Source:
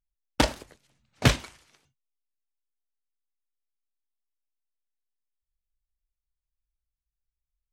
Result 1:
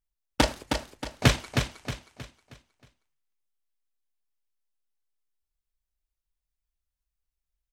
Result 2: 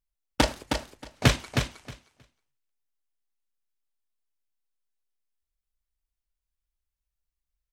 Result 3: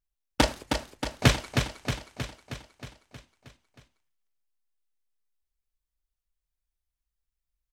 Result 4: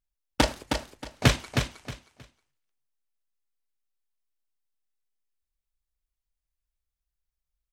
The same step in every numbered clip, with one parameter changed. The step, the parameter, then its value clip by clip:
feedback delay, feedback: 39%, 15%, 61%, 24%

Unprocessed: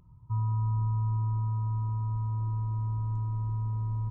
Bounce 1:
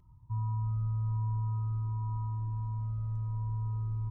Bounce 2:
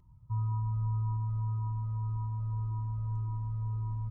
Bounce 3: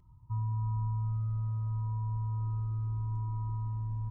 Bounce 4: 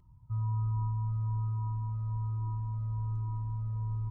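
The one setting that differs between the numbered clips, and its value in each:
Shepard-style flanger, rate: 0.46 Hz, 1.8 Hz, 0.29 Hz, 1.2 Hz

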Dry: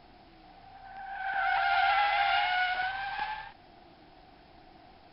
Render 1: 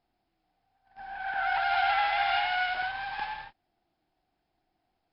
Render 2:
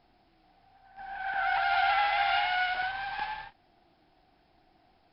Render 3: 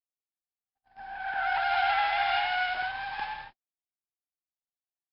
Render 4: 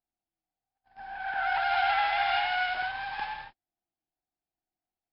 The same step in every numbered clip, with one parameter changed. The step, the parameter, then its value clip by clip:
gate, range: -23 dB, -10 dB, -59 dB, -41 dB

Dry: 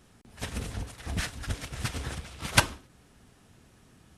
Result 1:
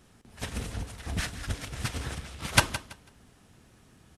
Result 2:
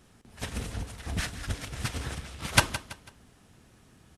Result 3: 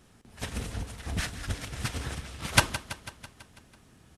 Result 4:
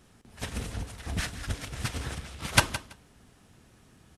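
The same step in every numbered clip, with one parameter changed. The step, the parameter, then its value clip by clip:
feedback delay, feedback: 23%, 36%, 61%, 15%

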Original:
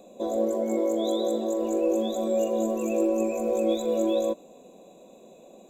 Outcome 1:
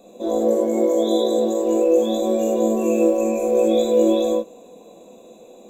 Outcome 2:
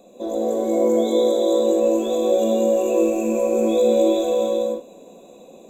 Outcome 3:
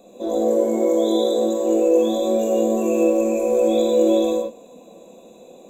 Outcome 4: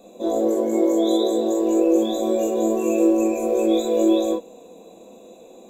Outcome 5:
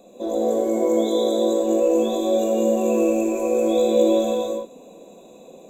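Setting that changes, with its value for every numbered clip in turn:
gated-style reverb, gate: 120 ms, 500 ms, 190 ms, 80 ms, 340 ms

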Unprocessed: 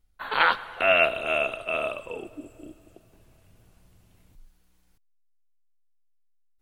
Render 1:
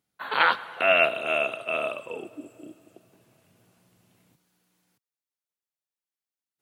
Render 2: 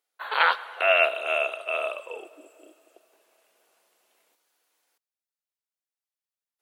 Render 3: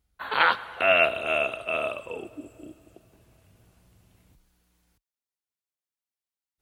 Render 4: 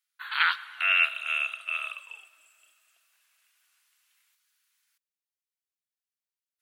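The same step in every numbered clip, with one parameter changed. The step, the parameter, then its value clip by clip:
high-pass, cutoff frequency: 130 Hz, 440 Hz, 40 Hz, 1.4 kHz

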